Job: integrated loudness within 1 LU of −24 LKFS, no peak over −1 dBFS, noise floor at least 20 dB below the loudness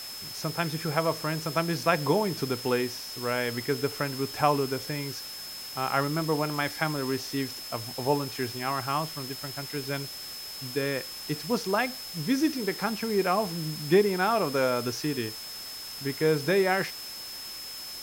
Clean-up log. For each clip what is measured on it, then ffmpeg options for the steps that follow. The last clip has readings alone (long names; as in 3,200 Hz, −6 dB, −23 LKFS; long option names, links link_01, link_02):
interfering tone 5,200 Hz; level of the tone −39 dBFS; background noise floor −40 dBFS; target noise floor −49 dBFS; integrated loudness −29.0 LKFS; sample peak −9.5 dBFS; target loudness −24.0 LKFS
→ -af "bandreject=frequency=5200:width=30"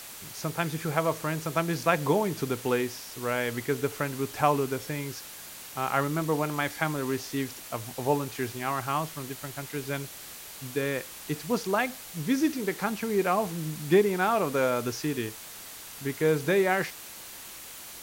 interfering tone none found; background noise floor −44 dBFS; target noise floor −49 dBFS
→ -af "afftdn=noise_reduction=6:noise_floor=-44"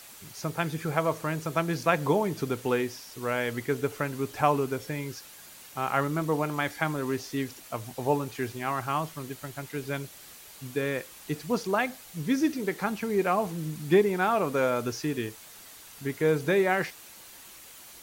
background noise floor −49 dBFS; integrated loudness −29.0 LKFS; sample peak −9.5 dBFS; target loudness −24.0 LKFS
→ -af "volume=5dB"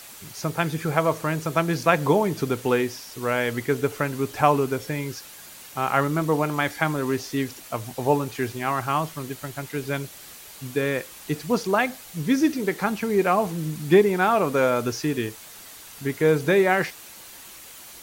integrated loudness −24.0 LKFS; sample peak −4.5 dBFS; background noise floor −44 dBFS